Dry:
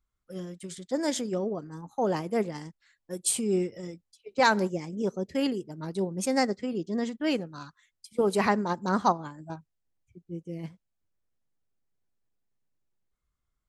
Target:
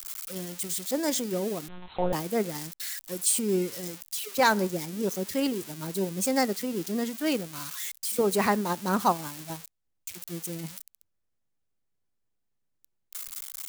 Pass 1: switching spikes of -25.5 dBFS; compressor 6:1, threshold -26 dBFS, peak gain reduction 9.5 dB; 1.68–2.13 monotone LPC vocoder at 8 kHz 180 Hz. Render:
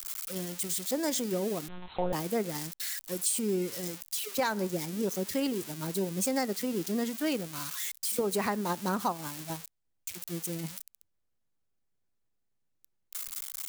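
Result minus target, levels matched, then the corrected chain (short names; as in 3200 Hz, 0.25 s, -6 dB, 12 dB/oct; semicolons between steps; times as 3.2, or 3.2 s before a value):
compressor: peak gain reduction +9.5 dB
switching spikes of -25.5 dBFS; 1.68–2.13 monotone LPC vocoder at 8 kHz 180 Hz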